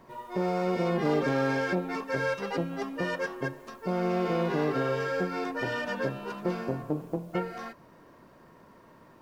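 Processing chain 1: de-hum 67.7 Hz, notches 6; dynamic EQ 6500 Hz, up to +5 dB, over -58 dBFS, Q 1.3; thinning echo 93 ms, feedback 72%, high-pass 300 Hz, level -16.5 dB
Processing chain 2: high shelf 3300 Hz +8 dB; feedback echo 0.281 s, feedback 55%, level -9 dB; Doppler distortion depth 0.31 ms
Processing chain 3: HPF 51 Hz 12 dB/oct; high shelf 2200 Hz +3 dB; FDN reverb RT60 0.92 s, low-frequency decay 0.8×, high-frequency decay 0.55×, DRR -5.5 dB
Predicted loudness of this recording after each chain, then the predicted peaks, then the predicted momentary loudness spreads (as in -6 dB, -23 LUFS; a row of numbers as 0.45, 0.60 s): -30.5, -29.5, -22.0 LUFS; -14.5, -13.0, -5.0 dBFS; 7, 10, 11 LU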